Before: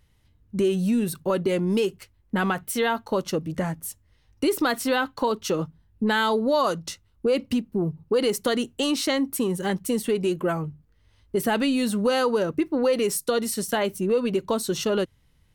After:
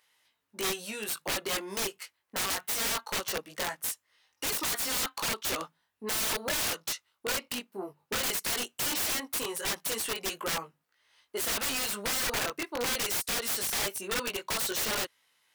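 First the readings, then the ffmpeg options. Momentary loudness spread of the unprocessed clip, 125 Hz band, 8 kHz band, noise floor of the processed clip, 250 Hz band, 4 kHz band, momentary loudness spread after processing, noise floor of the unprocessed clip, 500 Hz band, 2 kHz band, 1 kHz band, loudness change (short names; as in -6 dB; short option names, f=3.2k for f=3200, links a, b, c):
7 LU, -16.0 dB, +3.0 dB, -79 dBFS, -18.0 dB, 0.0 dB, 7 LU, -63 dBFS, -14.5 dB, -3.0 dB, -8.5 dB, -5.5 dB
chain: -af "flanger=delay=18:depth=3:speed=0.19,highpass=890,aeval=exprs='(mod(37.6*val(0)+1,2)-1)/37.6':c=same,volume=6.5dB"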